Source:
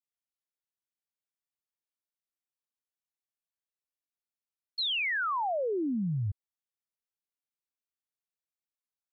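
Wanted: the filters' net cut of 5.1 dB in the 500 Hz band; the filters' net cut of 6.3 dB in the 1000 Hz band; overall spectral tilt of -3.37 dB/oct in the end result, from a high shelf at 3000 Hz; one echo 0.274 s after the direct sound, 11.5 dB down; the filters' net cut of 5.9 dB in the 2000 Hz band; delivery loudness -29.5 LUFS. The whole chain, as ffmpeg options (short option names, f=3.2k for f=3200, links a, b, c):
-af "equalizer=f=500:t=o:g=-5,equalizer=f=1k:t=o:g=-5,equalizer=f=2k:t=o:g=-8,highshelf=f=3k:g=5,aecho=1:1:274:0.266,volume=3.5dB"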